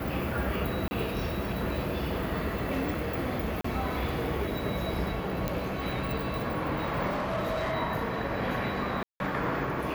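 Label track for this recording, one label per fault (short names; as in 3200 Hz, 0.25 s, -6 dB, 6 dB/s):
0.880000	0.910000	gap 30 ms
3.610000	3.640000	gap 34 ms
5.480000	5.480000	pop -15 dBFS
7.090000	7.730000	clipped -26.5 dBFS
9.030000	9.200000	gap 0.171 s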